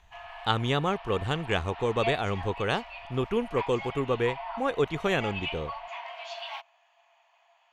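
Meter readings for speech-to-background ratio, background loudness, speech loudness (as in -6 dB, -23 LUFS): 9.5 dB, -39.0 LUFS, -29.5 LUFS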